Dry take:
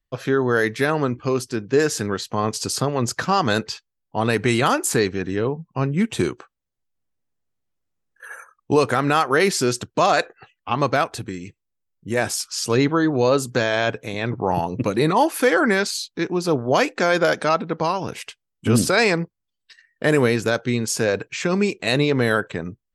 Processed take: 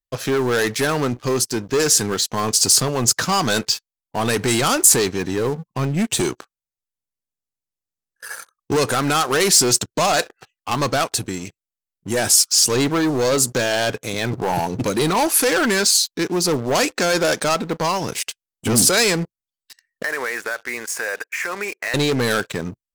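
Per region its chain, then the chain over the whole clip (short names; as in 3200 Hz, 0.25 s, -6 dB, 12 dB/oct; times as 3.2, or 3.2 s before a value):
20.03–21.94 HPF 670 Hz + resonant high shelf 2700 Hz -12.5 dB, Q 3 + compressor 4:1, threshold -25 dBFS
whole clip: sample leveller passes 3; tone controls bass -1 dB, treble +11 dB; gain -7.5 dB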